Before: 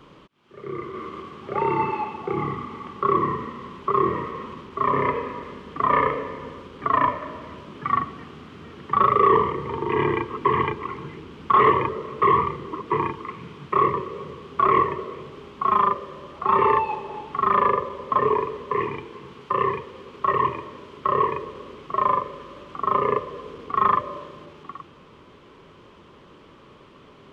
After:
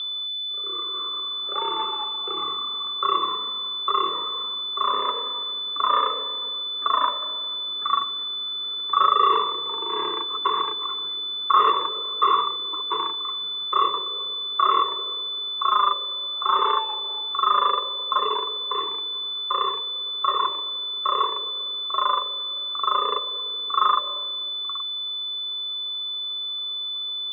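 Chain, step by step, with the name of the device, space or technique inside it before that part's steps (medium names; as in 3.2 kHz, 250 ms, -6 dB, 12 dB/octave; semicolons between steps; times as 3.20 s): toy sound module (decimation joined by straight lines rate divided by 8×; class-D stage that switches slowly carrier 3.5 kHz; cabinet simulation 670–3900 Hz, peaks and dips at 770 Hz -9 dB, 1.3 kHz +8 dB, 1.9 kHz -4 dB, 3.1 kHz +6 dB)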